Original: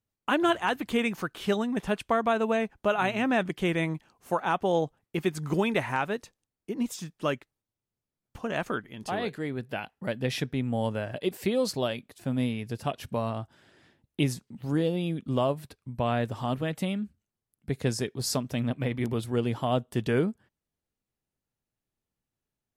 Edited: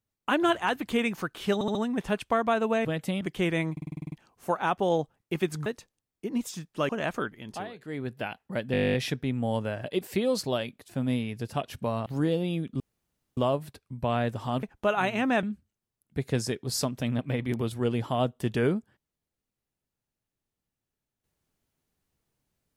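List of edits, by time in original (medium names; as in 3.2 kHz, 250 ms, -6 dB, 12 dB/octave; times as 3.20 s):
1.54 s: stutter 0.07 s, 4 plays
2.64–3.44 s: swap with 16.59–16.95 s
3.95 s: stutter 0.05 s, 9 plays
5.49–6.11 s: delete
7.34–8.41 s: delete
8.99–9.54 s: dip -14.5 dB, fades 0.26 s
10.24 s: stutter 0.02 s, 12 plays
13.36–14.59 s: delete
15.33 s: insert room tone 0.57 s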